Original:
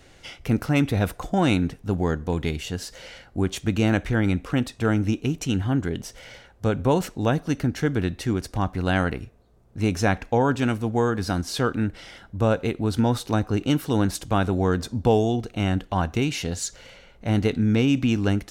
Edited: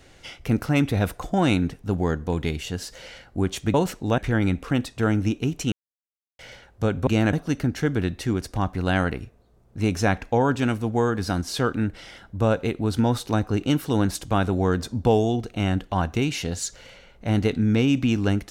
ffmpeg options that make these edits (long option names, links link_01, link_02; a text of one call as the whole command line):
ffmpeg -i in.wav -filter_complex "[0:a]asplit=7[link_01][link_02][link_03][link_04][link_05][link_06][link_07];[link_01]atrim=end=3.742[link_08];[link_02]atrim=start=6.888:end=7.332[link_09];[link_03]atrim=start=3.998:end=5.54,asetpts=PTS-STARTPTS,afade=type=out:start_time=1.538:duration=0.004:curve=hsin[link_10];[link_04]atrim=start=5.54:end=6.21,asetpts=PTS-STARTPTS,volume=0[link_11];[link_05]atrim=start=6.21:end=6.892,asetpts=PTS-STARTPTS,afade=type=in:duration=0.004:curve=hsin[link_12];[link_06]atrim=start=3.738:end=4.002[link_13];[link_07]atrim=start=7.328[link_14];[link_08][link_09]acrossfade=duration=0.004:curve1=hsin:curve2=hsin[link_15];[link_10][link_11][link_12]concat=n=3:v=0:a=1[link_16];[link_15][link_16]acrossfade=duration=0.004:curve1=hsin:curve2=hsin[link_17];[link_17][link_13]acrossfade=duration=0.004:curve1=hsin:curve2=hsin[link_18];[link_18][link_14]acrossfade=duration=0.004:curve1=hsin:curve2=hsin" out.wav